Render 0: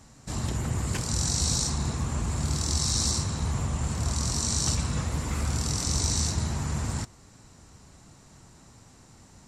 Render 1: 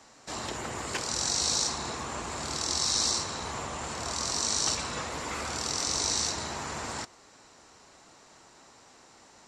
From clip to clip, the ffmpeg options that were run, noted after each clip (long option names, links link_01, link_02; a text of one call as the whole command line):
ffmpeg -i in.wav -filter_complex "[0:a]acrossover=split=330 6800:gain=0.0891 1 0.224[link_01][link_02][link_03];[link_01][link_02][link_03]amix=inputs=3:normalize=0,volume=3.5dB" out.wav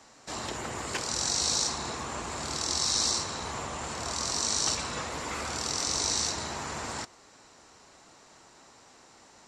ffmpeg -i in.wav -af anull out.wav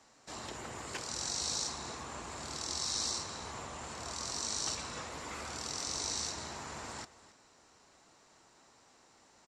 ffmpeg -i in.wav -af "aecho=1:1:276:0.133,volume=-8dB" out.wav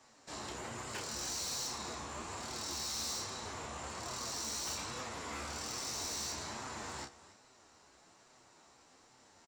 ffmpeg -i in.wav -filter_complex "[0:a]asplit=2[link_01][link_02];[link_02]adelay=31,volume=-5dB[link_03];[link_01][link_03]amix=inputs=2:normalize=0,volume=35dB,asoftclip=hard,volume=-35dB,flanger=delay=7.8:depth=6.5:regen=42:speed=1.2:shape=sinusoidal,volume=3dB" out.wav